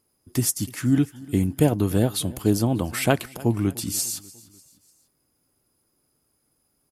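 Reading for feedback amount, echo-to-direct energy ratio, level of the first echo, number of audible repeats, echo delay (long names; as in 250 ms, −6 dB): 47%, −20.0 dB, −21.0 dB, 3, 297 ms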